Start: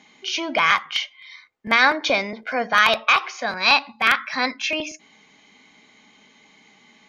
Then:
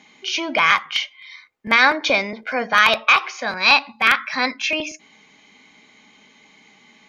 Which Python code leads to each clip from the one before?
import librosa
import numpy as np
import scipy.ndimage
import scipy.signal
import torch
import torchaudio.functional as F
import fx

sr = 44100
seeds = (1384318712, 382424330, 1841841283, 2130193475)

y = fx.peak_eq(x, sr, hz=2400.0, db=2.5, octaves=0.25)
y = fx.notch(y, sr, hz=700.0, q=21.0)
y = y * librosa.db_to_amplitude(1.5)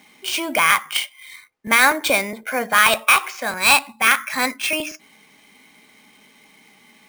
y = fx.sample_hold(x, sr, seeds[0], rate_hz=12000.0, jitter_pct=0)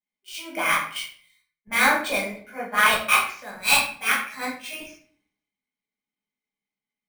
y = fx.room_shoebox(x, sr, seeds[1], volume_m3=170.0, walls='mixed', distance_m=1.4)
y = fx.band_widen(y, sr, depth_pct=100)
y = y * librosa.db_to_amplitude(-13.0)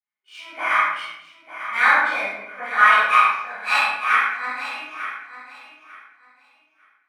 y = fx.bandpass_q(x, sr, hz=1400.0, q=1.7)
y = fx.echo_feedback(y, sr, ms=897, feedback_pct=21, wet_db=-12)
y = fx.room_shoebox(y, sr, seeds[2], volume_m3=230.0, walls='mixed', distance_m=3.4)
y = y * librosa.db_to_amplitude(-2.5)